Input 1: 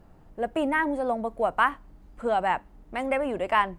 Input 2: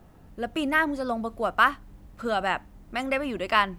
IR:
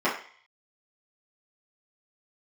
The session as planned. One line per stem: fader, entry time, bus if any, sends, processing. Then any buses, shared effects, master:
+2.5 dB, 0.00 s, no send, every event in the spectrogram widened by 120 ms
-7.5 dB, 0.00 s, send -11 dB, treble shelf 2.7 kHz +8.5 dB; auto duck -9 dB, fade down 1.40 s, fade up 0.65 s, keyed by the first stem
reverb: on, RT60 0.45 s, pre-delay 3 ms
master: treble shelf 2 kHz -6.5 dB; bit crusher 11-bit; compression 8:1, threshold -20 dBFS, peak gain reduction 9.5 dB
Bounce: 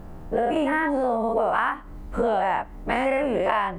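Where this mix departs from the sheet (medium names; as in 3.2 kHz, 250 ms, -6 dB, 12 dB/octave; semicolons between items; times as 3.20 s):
stem 1 +2.5 dB -> +9.0 dB; stem 2 -7.5 dB -> -14.0 dB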